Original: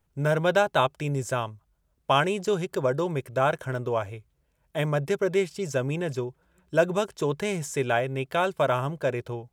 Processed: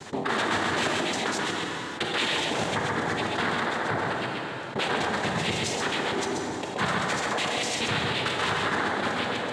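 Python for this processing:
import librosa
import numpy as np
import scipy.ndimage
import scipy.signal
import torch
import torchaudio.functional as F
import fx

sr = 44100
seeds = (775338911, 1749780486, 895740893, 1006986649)

y = fx.local_reverse(x, sr, ms=125.0)
y = fx.spec_gate(y, sr, threshold_db=-10, keep='weak')
y = fx.noise_vocoder(y, sr, seeds[0], bands=6)
y = y + 10.0 ** (-6.0 / 20.0) * np.pad(y, (int(133 * sr / 1000.0), 0))[:len(y)]
y = fx.rev_plate(y, sr, seeds[1], rt60_s=1.4, hf_ratio=0.85, predelay_ms=0, drr_db=5.0)
y = fx.env_flatten(y, sr, amount_pct=70)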